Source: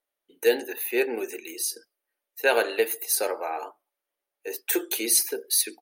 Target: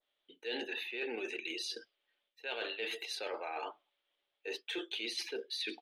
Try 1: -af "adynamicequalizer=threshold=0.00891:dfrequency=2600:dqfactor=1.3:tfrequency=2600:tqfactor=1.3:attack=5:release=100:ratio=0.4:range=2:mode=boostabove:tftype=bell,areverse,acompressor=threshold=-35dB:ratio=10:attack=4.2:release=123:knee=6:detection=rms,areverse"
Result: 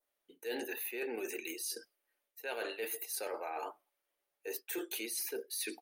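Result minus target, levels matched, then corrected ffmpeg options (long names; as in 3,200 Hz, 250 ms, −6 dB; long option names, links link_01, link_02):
4,000 Hz band −6.5 dB
-af "adynamicequalizer=threshold=0.00891:dfrequency=2600:dqfactor=1.3:tfrequency=2600:tqfactor=1.3:attack=5:release=100:ratio=0.4:range=2:mode=boostabove:tftype=bell,lowpass=frequency=3400:width_type=q:width=4.5,areverse,acompressor=threshold=-35dB:ratio=10:attack=4.2:release=123:knee=6:detection=rms,areverse"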